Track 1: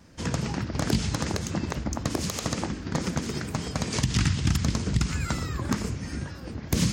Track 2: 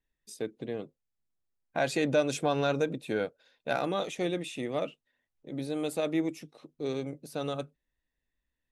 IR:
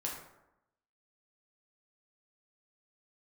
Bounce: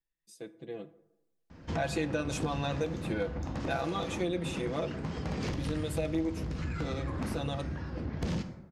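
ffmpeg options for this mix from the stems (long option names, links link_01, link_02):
-filter_complex "[0:a]lowpass=4400,highshelf=frequency=2200:gain=-7,asoftclip=type=tanh:threshold=-27.5dB,adelay=1500,volume=-1.5dB,asplit=2[link_01][link_02];[link_02]volume=-3.5dB[link_03];[1:a]aecho=1:1:6:0.97,dynaudnorm=framelen=620:gausssize=3:maxgain=12dB,volume=-13.5dB,asplit=3[link_04][link_05][link_06];[link_05]volume=-11.5dB[link_07];[link_06]apad=whole_len=371736[link_08];[link_01][link_08]sidechaincompress=threshold=-39dB:ratio=8:attack=16:release=681[link_09];[2:a]atrim=start_sample=2205[link_10];[link_03][link_07]amix=inputs=2:normalize=0[link_11];[link_11][link_10]afir=irnorm=-1:irlink=0[link_12];[link_09][link_04][link_12]amix=inputs=3:normalize=0,acompressor=threshold=-32dB:ratio=2"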